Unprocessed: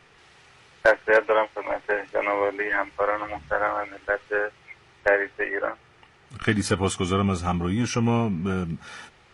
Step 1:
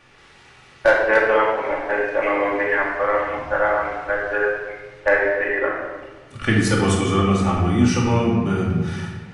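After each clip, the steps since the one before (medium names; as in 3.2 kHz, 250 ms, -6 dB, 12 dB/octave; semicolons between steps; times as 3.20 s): simulated room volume 1100 m³, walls mixed, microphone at 2.4 m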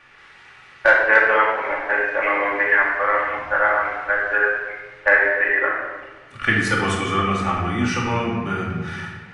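peaking EQ 1.7 kHz +12 dB 2 oct; trim -6.5 dB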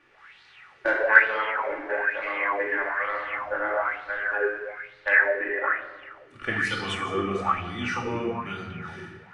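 sweeping bell 1.1 Hz 310–4300 Hz +15 dB; trim -11.5 dB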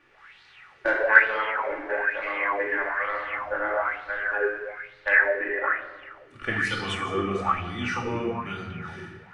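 bass shelf 67 Hz +6 dB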